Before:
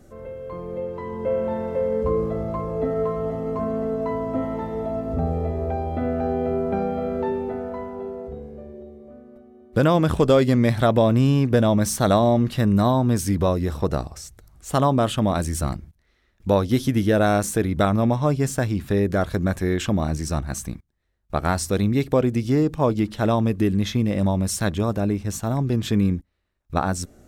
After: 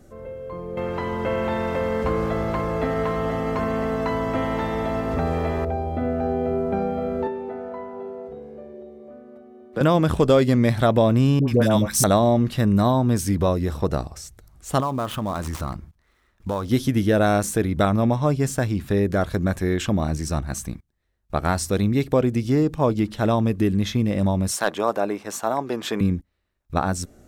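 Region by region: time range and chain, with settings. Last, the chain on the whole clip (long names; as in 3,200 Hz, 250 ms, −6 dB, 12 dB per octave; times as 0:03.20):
0:00.77–0:05.65: high-shelf EQ 3,700 Hz −9.5 dB + every bin compressed towards the loudest bin 2 to 1
0:07.27–0:09.81: high-pass filter 350 Hz 6 dB per octave + high-shelf EQ 4,900 Hz −9.5 dB + multiband upward and downward compressor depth 40%
0:11.39–0:12.04: high-shelf EQ 4,600 Hz +7.5 dB + all-pass dispersion highs, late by 89 ms, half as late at 740 Hz
0:14.80–0:16.69: gap after every zero crossing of 0.071 ms + parametric band 1,100 Hz +8 dB 0.82 octaves + downward compressor 2.5 to 1, threshold −25 dBFS
0:24.51–0:26.01: high-pass filter 370 Hz + parametric band 920 Hz +8 dB 2.1 octaves + hard clipping −9 dBFS
whole clip: no processing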